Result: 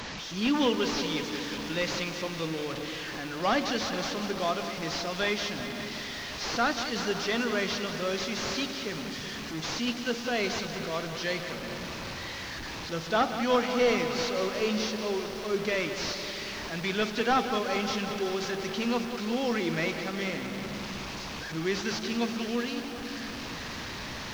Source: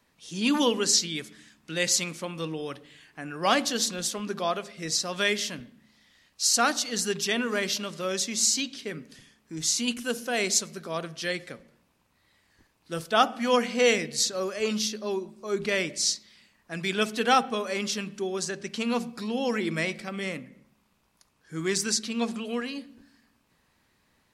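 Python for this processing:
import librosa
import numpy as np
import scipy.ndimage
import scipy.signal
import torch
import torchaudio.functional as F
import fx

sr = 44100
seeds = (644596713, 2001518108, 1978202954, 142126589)

p1 = fx.delta_mod(x, sr, bps=32000, step_db=-31.5)
p2 = fx.echo_diffused(p1, sr, ms=466, feedback_pct=49, wet_db=-14.5)
p3 = 10.0 ** (-24.5 / 20.0) * np.tanh(p2 / 10.0 ** (-24.5 / 20.0))
p4 = p2 + F.gain(torch.from_numpy(p3), -8.0).numpy()
p5 = fx.echo_crushed(p4, sr, ms=185, feedback_pct=80, bits=7, wet_db=-10.0)
y = F.gain(torch.from_numpy(p5), -3.5).numpy()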